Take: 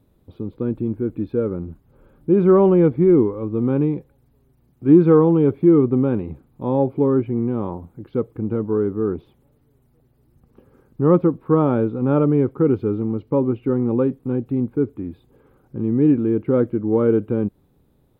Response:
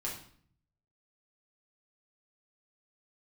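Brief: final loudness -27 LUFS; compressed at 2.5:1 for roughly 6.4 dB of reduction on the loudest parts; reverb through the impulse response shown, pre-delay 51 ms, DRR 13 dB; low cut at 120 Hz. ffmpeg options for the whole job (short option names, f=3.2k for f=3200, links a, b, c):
-filter_complex "[0:a]highpass=120,acompressor=threshold=-18dB:ratio=2.5,asplit=2[a][b];[1:a]atrim=start_sample=2205,adelay=51[c];[b][c]afir=irnorm=-1:irlink=0,volume=-15dB[d];[a][d]amix=inputs=2:normalize=0,volume=-4dB"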